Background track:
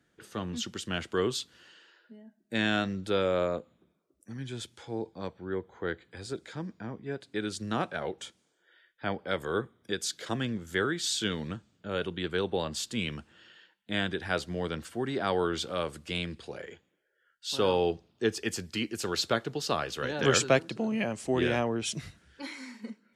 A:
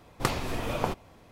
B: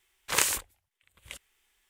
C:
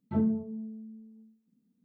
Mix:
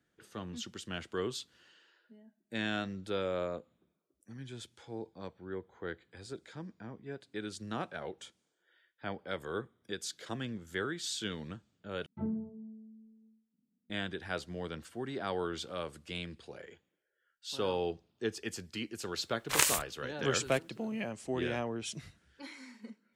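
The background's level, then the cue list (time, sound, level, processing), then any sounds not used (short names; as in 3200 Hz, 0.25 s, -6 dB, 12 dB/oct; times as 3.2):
background track -7 dB
12.06 replace with C -8.5 dB + air absorption 280 m
19.21 add B -2 dB
not used: A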